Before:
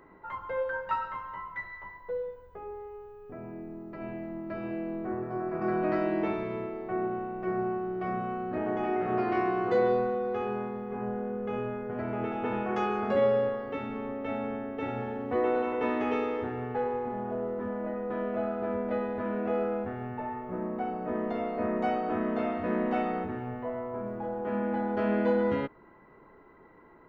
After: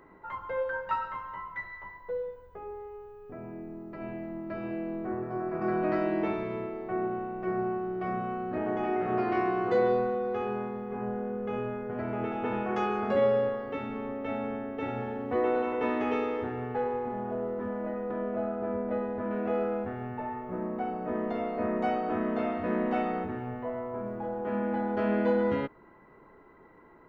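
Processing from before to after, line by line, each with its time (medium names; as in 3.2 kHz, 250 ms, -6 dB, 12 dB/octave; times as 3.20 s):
18.11–19.31 s: treble shelf 2.4 kHz -11.5 dB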